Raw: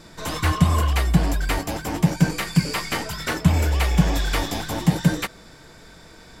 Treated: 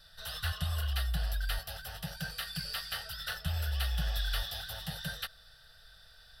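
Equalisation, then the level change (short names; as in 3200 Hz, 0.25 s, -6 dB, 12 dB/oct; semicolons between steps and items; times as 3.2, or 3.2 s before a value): passive tone stack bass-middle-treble 10-0-10; fixed phaser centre 1500 Hz, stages 8; -3.0 dB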